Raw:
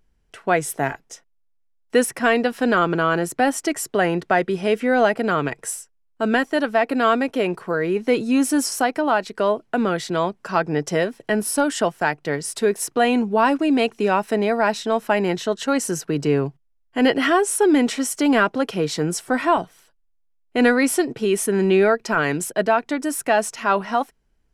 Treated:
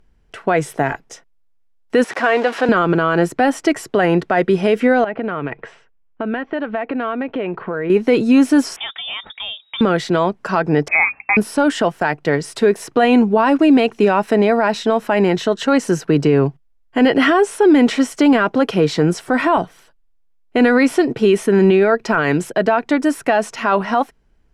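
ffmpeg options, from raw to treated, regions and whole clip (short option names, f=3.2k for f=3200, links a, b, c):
-filter_complex "[0:a]asettb=1/sr,asplit=3[a][b][c];[a]atrim=end=2.044[d];[b]atrim=start=2.04:end=2.69,asetpts=PTS-STARTPTS,afade=t=in:d=0.004:c=qsin,afade=t=out:st=0.646:d=0.004:c=qsin,aeval=exprs='val(0)+0.5*0.0473*sgn(val(0))':c=same,highpass=470,lowpass=7.5k,highshelf=f=3k:g=-7[e];[c]atrim=start=2.686[f];[d][e]acrossfade=d=0.004:c1=hsin:c2=qsin[g];[g][f]acrossfade=d=0.004:c1=qsin:c2=hsin,asettb=1/sr,asplit=3[h][i][j];[h]atrim=end=5.044[k];[i]atrim=start=5.04:end=7.9,asetpts=PTS-STARTPTS,afade=t=in:d=0.004:c=qsin,afade=t=out:st=2.856:d=0.004:c=qsin,lowpass=f=3.1k:w=0.5412,lowpass=f=3.1k:w=1.3066,acompressor=threshold=-28dB:ratio=4:attack=3.2:release=140:knee=1:detection=peak[l];[j]atrim=start=7.896[m];[k][l]acrossfade=d=0.004:c1=hsin:c2=qsin[n];[n][m]acrossfade=d=0.004:c1=qsin:c2=hsin,asettb=1/sr,asplit=3[o][p][q];[o]atrim=end=8.764[r];[p]atrim=start=8.76:end=9.81,asetpts=PTS-STARTPTS,afade=t=in:d=0.004:c=qsin,afade=t=out:st=1.046:d=0.004:c=qsin,acrossover=split=130|3000[s][t][u];[t]acompressor=threshold=-44dB:ratio=2:attack=3.2:release=140:knee=2.83:detection=peak[v];[s][v][u]amix=inputs=3:normalize=0,lowpass=f=3.2k:t=q:w=0.5098,lowpass=f=3.2k:t=q:w=0.6013,lowpass=f=3.2k:t=q:w=0.9,lowpass=f=3.2k:t=q:w=2.563,afreqshift=-3800[w];[q]atrim=start=9.806[x];[r][w]acrossfade=d=0.004:c1=hsin:c2=qsin[y];[y][x]acrossfade=d=0.004:c1=qsin:c2=hsin,asettb=1/sr,asplit=3[z][aa][ab];[z]atrim=end=10.884[ac];[aa]atrim=start=10.88:end=11.37,asetpts=PTS-STARTPTS,afade=t=in:d=0.004:c=qsin,afade=t=out:st=0.486:d=0.004:c=qsin,lowpass=f=2.3k:t=q:w=0.5098,lowpass=f=2.3k:t=q:w=0.6013,lowpass=f=2.3k:t=q:w=0.9,lowpass=f=2.3k:t=q:w=2.563,afreqshift=-2700,bandreject=f=66.44:t=h:w=4,bandreject=f=132.88:t=h:w=4,bandreject=f=199.32:t=h:w=4,bandreject=f=265.76:t=h:w=4[ad];[ab]atrim=start=11.366[ae];[ac][ad]acrossfade=d=0.004:c1=hsin:c2=qsin[af];[af][ae]acrossfade=d=0.004:c1=qsin:c2=hsin,acrossover=split=4700[ag][ah];[ah]acompressor=threshold=-34dB:ratio=4:attack=1:release=60[ai];[ag][ai]amix=inputs=2:normalize=0,aemphasis=mode=reproduction:type=cd,alimiter=level_in=12dB:limit=-1dB:release=50:level=0:latency=1,volume=-4dB"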